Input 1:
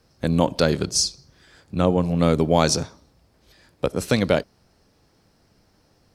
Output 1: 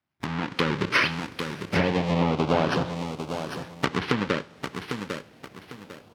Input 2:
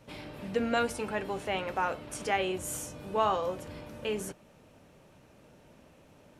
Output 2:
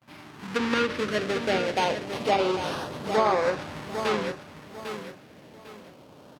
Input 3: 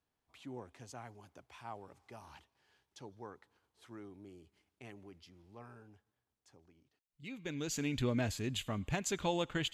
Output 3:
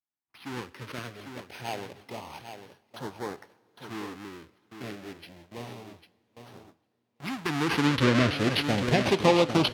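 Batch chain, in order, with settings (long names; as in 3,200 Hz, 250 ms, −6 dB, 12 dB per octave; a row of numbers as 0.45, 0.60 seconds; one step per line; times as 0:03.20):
each half-wave held at its own peak
decimation without filtering 6×
auto-filter notch saw up 0.28 Hz 450–3,300 Hz
downward compressor 12 to 1, threshold −22 dBFS
on a send: repeating echo 800 ms, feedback 29%, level −9 dB
on the sum: noise gate with hold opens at −49 dBFS
high-pass filter 95 Hz 12 dB per octave
parametric band 10,000 Hz −9.5 dB 1.8 octaves
coupled-rooms reverb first 0.53 s, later 4.9 s, from −17 dB, DRR 18 dB
treble cut that deepens with the level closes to 1,900 Hz, closed at −19 dBFS
low-shelf EQ 270 Hz −8.5 dB
automatic gain control gain up to 9 dB
loudness normalisation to −27 LKFS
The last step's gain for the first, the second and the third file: −1.5, −2.5, +3.5 decibels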